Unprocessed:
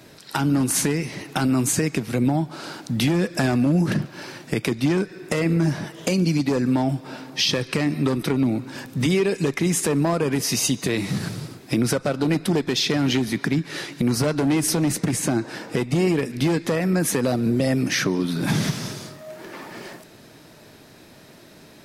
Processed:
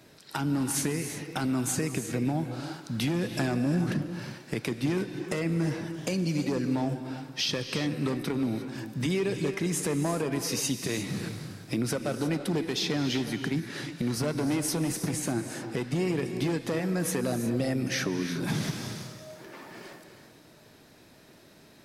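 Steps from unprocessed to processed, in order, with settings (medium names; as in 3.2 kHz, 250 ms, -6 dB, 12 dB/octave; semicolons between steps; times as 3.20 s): gated-style reverb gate 380 ms rising, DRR 8 dB; trim -8 dB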